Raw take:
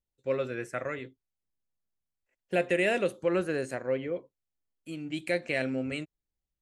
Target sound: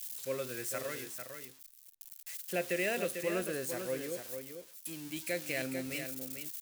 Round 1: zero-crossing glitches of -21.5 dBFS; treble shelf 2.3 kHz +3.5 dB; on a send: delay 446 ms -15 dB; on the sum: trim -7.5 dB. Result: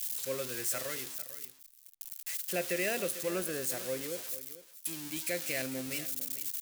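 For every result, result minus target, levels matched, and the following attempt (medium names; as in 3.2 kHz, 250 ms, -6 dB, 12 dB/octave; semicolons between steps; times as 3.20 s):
echo-to-direct -7.5 dB; zero-crossing glitches: distortion +6 dB
zero-crossing glitches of -21.5 dBFS; treble shelf 2.3 kHz +3.5 dB; on a send: delay 446 ms -7.5 dB; on the sum: trim -7.5 dB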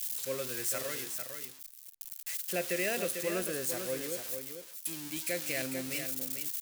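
zero-crossing glitches: distortion +6 dB
zero-crossing glitches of -28 dBFS; treble shelf 2.3 kHz +3.5 dB; on a send: delay 446 ms -7.5 dB; on the sum: trim -7.5 dB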